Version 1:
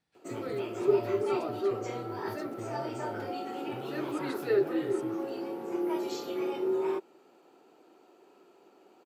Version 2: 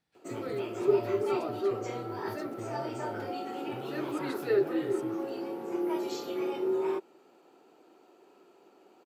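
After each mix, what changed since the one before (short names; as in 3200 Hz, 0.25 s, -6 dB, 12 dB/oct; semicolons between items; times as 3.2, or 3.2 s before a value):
speech: remove brick-wall FIR low-pass 11000 Hz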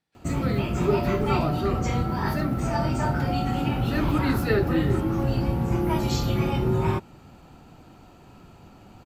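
background: remove ladder high-pass 340 Hz, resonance 60%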